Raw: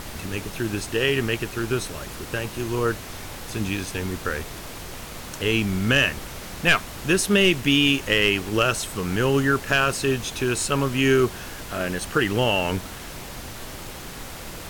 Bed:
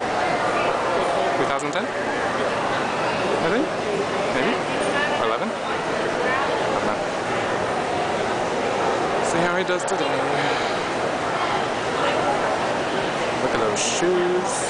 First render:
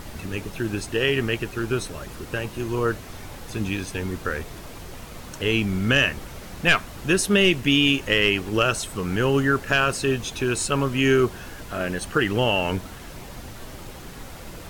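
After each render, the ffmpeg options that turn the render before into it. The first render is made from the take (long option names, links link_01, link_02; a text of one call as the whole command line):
ffmpeg -i in.wav -af "afftdn=noise_reduction=6:noise_floor=-37" out.wav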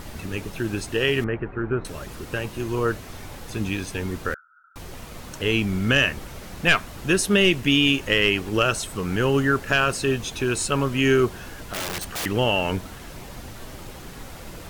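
ffmpeg -i in.wav -filter_complex "[0:a]asettb=1/sr,asplit=3[link_01][link_02][link_03];[link_01]atrim=end=1.244[link_04];[link_02]atrim=start=1.24:end=1.85,asetpts=PTS-STARTPTS,afade=type=in:duration=0.004:curve=qsin,afade=type=out:start_time=0.606:duration=0.004:curve=qsin,lowpass=frequency=1800:width=0.5412,lowpass=frequency=1800:width=1.3066[link_05];[link_03]atrim=start=1.846[link_06];[link_04][link_05]acrossfade=duration=0.004:curve1=hsin:curve2=qsin[link_07];[link_07][link_06]acrossfade=duration=0.004:curve1=qsin:curve2=hsin,asettb=1/sr,asplit=3[link_08][link_09][link_10];[link_08]atrim=end=4.344[link_11];[link_09]atrim=start=4.34:end=4.76,asetpts=PTS-STARTPTS,afade=type=in:duration=0.004:curve=qsin,afade=type=out:start_time=0.416:duration=0.004:curve=qsin,asuperpass=centerf=1400:order=8:qfactor=5.9[link_12];[link_10]atrim=start=4.756[link_13];[link_11][link_12]acrossfade=duration=0.004:curve1=hsin:curve2=qsin[link_14];[link_14][link_13]acrossfade=duration=0.004:curve1=qsin:curve2=hsin,asettb=1/sr,asplit=3[link_15][link_16][link_17];[link_15]atrim=end=11.734[link_18];[link_16]atrim=start=11.73:end=12.26,asetpts=PTS-STARTPTS,afade=type=in:duration=0.004:curve=qsin,afade=type=out:start_time=0.526:duration=0.004:curve=qsin,aeval=exprs='(mod(15*val(0)+1,2)-1)/15':channel_layout=same[link_19];[link_17]atrim=start=12.256[link_20];[link_18][link_19]acrossfade=duration=0.004:curve1=hsin:curve2=qsin[link_21];[link_21][link_20]acrossfade=duration=0.004:curve1=qsin:curve2=hsin" out.wav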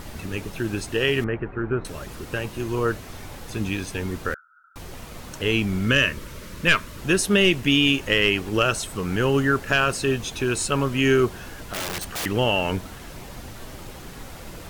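ffmpeg -i in.wav -filter_complex "[0:a]asettb=1/sr,asplit=3[link_01][link_02][link_03];[link_01]atrim=end=5.864[link_04];[link_02]atrim=start=5.86:end=7.01,asetpts=PTS-STARTPTS,afade=type=in:duration=0.004:curve=qsin,afade=type=out:start_time=1.146:duration=0.004:curve=qsin,asuperstop=centerf=760:order=4:qfactor=3[link_05];[link_03]atrim=start=7.006[link_06];[link_04][link_05]acrossfade=duration=0.004:curve1=hsin:curve2=qsin[link_07];[link_07][link_06]acrossfade=duration=0.004:curve1=qsin:curve2=hsin" out.wav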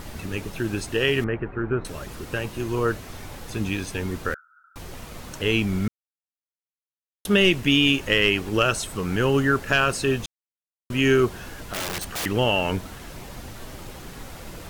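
ffmpeg -i in.wav -filter_complex "[0:a]asplit=5[link_01][link_02][link_03][link_04][link_05];[link_01]atrim=end=5.88,asetpts=PTS-STARTPTS,afade=type=out:start_time=5.876:duration=0.004:curve=hsin[link_06];[link_02]atrim=start=5.88:end=7.25,asetpts=PTS-STARTPTS,volume=0[link_07];[link_03]atrim=start=7.25:end=10.26,asetpts=PTS-STARTPTS,afade=type=in:duration=0.004:curve=hsin,afade=type=out:start_time=3.006:duration=0.004:curve=hsin[link_08];[link_04]atrim=start=10.26:end=10.9,asetpts=PTS-STARTPTS,volume=0[link_09];[link_05]atrim=start=10.9,asetpts=PTS-STARTPTS,afade=type=in:duration=0.004:curve=hsin[link_10];[link_06][link_07][link_08][link_09][link_10]concat=n=5:v=0:a=1" out.wav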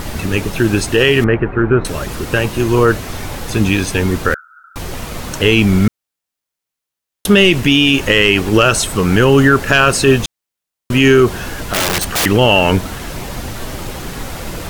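ffmpeg -i in.wav -af "acontrast=31,alimiter=level_in=8dB:limit=-1dB:release=50:level=0:latency=1" out.wav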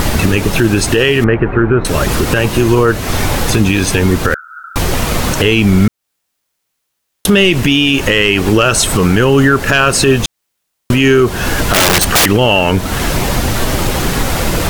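ffmpeg -i in.wav -af "acompressor=threshold=-21dB:ratio=3,alimiter=level_in=12dB:limit=-1dB:release=50:level=0:latency=1" out.wav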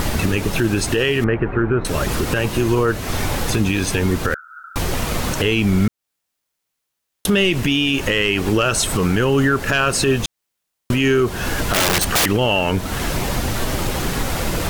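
ffmpeg -i in.wav -af "volume=-7dB" out.wav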